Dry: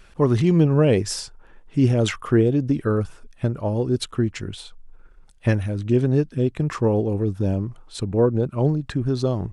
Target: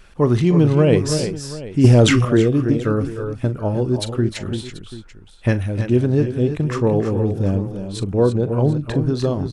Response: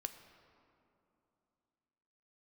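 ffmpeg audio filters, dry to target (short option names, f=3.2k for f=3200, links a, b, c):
-filter_complex "[0:a]asplit=2[a][b];[b]aecho=0:1:41|303|329|736:0.178|0.2|0.355|0.15[c];[a][c]amix=inputs=2:normalize=0,asettb=1/sr,asplit=3[d][e][f];[d]atrim=end=1.844[g];[e]atrim=start=1.84:end=2.25,asetpts=PTS-STARTPTS,afade=t=in:d=0.004:c=qsin,afade=t=out:st=0.406:d=0.004:c=qsin,acontrast=69[h];[f]atrim=start=2.246[i];[g][h]acrossfade=d=0.004:c1=hsin:c2=qsin[j];[j][i]acrossfade=d=0.004:c1=qsin:c2=hsin,volume=2dB"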